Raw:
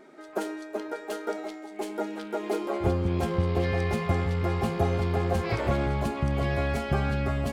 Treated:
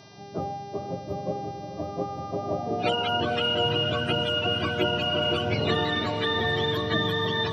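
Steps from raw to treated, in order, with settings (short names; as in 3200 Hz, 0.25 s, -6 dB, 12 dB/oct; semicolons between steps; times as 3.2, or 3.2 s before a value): spectrum mirrored in octaves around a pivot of 500 Hz; diffused feedback echo 0.504 s, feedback 43%, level -8 dB; buzz 400 Hz, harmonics 15, -56 dBFS -1 dB/oct; gain +2.5 dB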